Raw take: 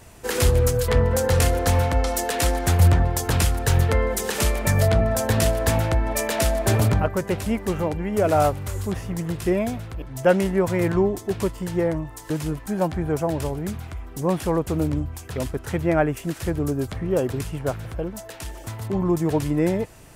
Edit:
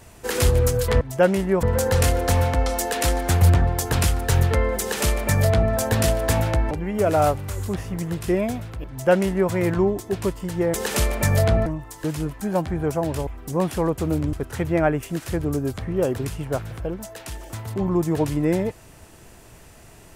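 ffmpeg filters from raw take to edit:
-filter_complex "[0:a]asplit=8[s0][s1][s2][s3][s4][s5][s6][s7];[s0]atrim=end=1.012[s8];[s1]atrim=start=10.068:end=10.692[s9];[s2]atrim=start=1.008:end=6.092[s10];[s3]atrim=start=7.888:end=11.922[s11];[s4]atrim=start=4.178:end=5.102[s12];[s5]atrim=start=11.918:end=13.532[s13];[s6]atrim=start=13.958:end=15.022[s14];[s7]atrim=start=15.468[s15];[s8][s9]acrossfade=d=0.004:c1=hsin:c2=hsin[s16];[s16][s10]acrossfade=d=0.004:c1=hsin:c2=hsin[s17];[s17][s11]acrossfade=d=0.004:c1=hsin:c2=hsin[s18];[s18][s12]acrossfade=d=0.004:c1=hsin:c2=hsin[s19];[s19][s13]acrossfade=d=0.004:c1=hsin:c2=hsin[s20];[s20][s14]acrossfade=d=0.004:c1=hsin:c2=hsin[s21];[s21][s15]acrossfade=d=0.004:c1=hsin:c2=hsin"

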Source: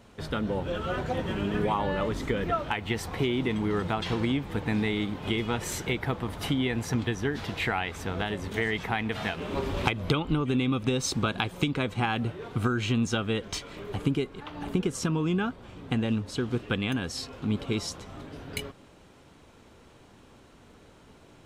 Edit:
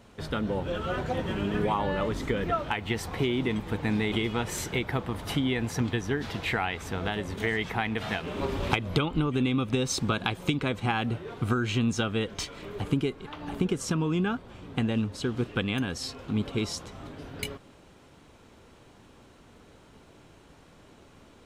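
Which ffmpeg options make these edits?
-filter_complex "[0:a]asplit=3[s0][s1][s2];[s0]atrim=end=3.602[s3];[s1]atrim=start=4.428:end=4.952[s4];[s2]atrim=start=5.258[s5];[s3][s4]acrossfade=d=0.004:c1=hsin:c2=hsin[s6];[s6][s5]acrossfade=d=0.004:c1=hsin:c2=hsin"

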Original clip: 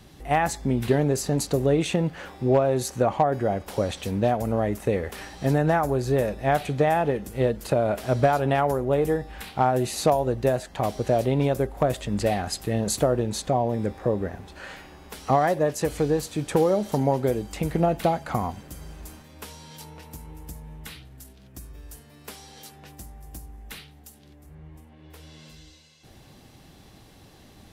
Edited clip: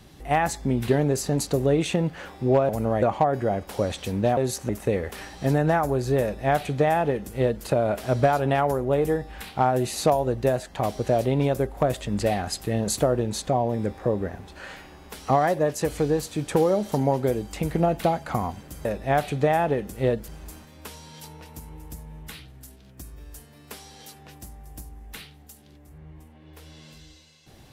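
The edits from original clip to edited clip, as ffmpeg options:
-filter_complex "[0:a]asplit=7[s0][s1][s2][s3][s4][s5][s6];[s0]atrim=end=2.692[s7];[s1]atrim=start=4.358:end=4.692[s8];[s2]atrim=start=3.008:end=4.362[s9];[s3]atrim=start=2.688:end=3.012[s10];[s4]atrim=start=4.688:end=18.852[s11];[s5]atrim=start=6.218:end=7.652[s12];[s6]atrim=start=18.848[s13];[s7][s8]acrossfade=d=0.004:c1=hsin:c2=hsin[s14];[s14][s9]acrossfade=d=0.004:c1=hsin:c2=hsin[s15];[s15][s10]acrossfade=d=0.004:c1=hsin:c2=hsin[s16];[s16][s11]acrossfade=d=0.004:c1=hsin:c2=hsin[s17];[s17][s12]acrossfade=d=0.004:c1=hsin:c2=hsin[s18];[s18][s13]acrossfade=d=0.004:c1=hsin:c2=hsin"

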